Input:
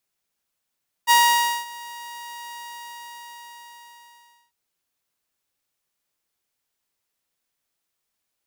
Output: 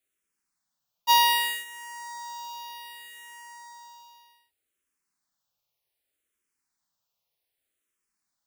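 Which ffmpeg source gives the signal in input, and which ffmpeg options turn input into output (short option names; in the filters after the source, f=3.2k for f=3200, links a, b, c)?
-f lavfi -i "aevalsrc='0.335*(2*mod(947*t,1)-1)':d=3.45:s=44100,afade=t=in:d=0.036,afade=t=out:st=0.036:d=0.542:silence=0.0708,afade=t=out:st=1.46:d=1.99"
-filter_complex "[0:a]asplit=2[a][b];[b]afreqshift=-0.65[c];[a][c]amix=inputs=2:normalize=1"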